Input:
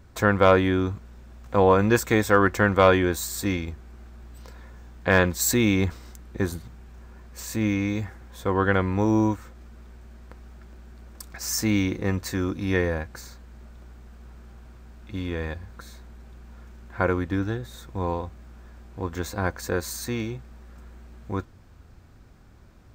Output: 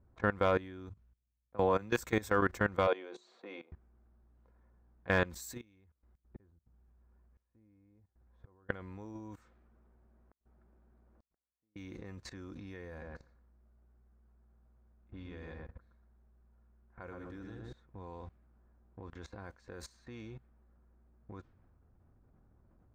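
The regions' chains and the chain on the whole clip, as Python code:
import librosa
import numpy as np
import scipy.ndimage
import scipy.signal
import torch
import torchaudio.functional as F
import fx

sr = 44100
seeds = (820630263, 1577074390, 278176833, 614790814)

y = fx.chain(x, sr, fx.low_shelf(hz=70.0, db=-7.0),
    fx.band_widen(depth_pct=70), at=(0.89, 1.98))
y = fx.chain(y, sr, fx.cabinet(low_hz=300.0, low_slope=24, high_hz=5500.0, hz=(300.0, 500.0, 720.0, 1700.0, 5200.0), db=(-7, 5, 4, -7, -8)),
    fx.hum_notches(base_hz=60, count=7), at=(2.87, 3.72))
y = fx.chain(y, sr, fx.peak_eq(hz=74.0, db=12.0, octaves=0.45),
    fx.gate_flip(shuts_db=-28.0, range_db=-26), at=(5.61, 8.69))
y = fx.chain(y, sr, fx.low_shelf(hz=200.0, db=-6.0),
    fx.gate_flip(shuts_db=-33.0, range_db=-41), at=(9.35, 11.76))
y = fx.chain(y, sr, fx.hum_notches(base_hz=50, count=9),
    fx.echo_filtered(ms=118, feedback_pct=30, hz=2100.0, wet_db=-4.0), at=(12.9, 17.73))
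y = fx.env_lowpass(y, sr, base_hz=920.0, full_db=-21.0)
y = fx.level_steps(y, sr, step_db=19)
y = y * 10.0 ** (-8.5 / 20.0)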